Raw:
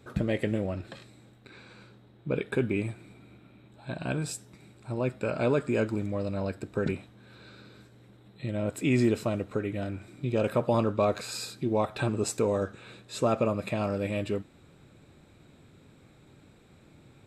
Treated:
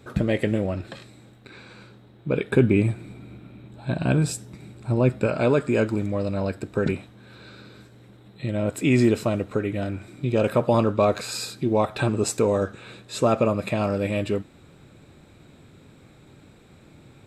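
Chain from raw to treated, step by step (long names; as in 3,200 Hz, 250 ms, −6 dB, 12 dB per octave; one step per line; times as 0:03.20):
0:02.51–0:05.27: low-shelf EQ 370 Hz +7 dB
level +5.5 dB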